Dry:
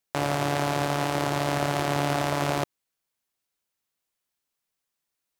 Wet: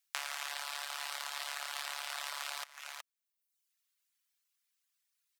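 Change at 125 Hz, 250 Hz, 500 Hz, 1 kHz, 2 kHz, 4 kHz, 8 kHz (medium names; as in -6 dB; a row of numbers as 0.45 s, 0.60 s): under -40 dB, under -40 dB, -28.0 dB, -16.5 dB, -8.5 dB, -5.0 dB, -5.0 dB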